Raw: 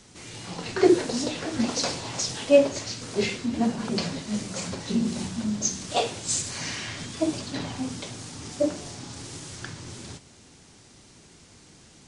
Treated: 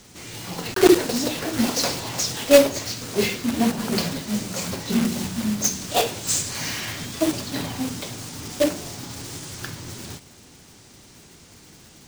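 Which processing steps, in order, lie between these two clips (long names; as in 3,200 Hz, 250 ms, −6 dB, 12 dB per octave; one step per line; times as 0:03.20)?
one scale factor per block 3 bits
level +3.5 dB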